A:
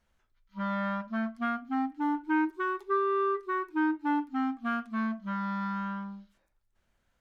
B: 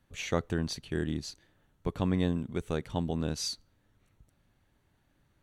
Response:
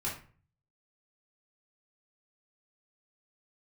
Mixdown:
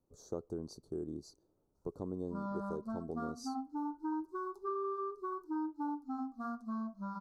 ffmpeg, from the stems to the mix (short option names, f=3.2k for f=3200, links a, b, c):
-filter_complex "[0:a]flanger=delay=2.1:depth=4.4:regen=-75:speed=0.76:shape=sinusoidal,adelay=1750,volume=0.5dB[a];[1:a]equalizer=f=390:t=o:w=1.2:g=13,volume=-13.5dB[b];[a][b]amix=inputs=2:normalize=0,asuperstop=centerf=2400:order=8:qfactor=0.74,acompressor=threshold=-39dB:ratio=2"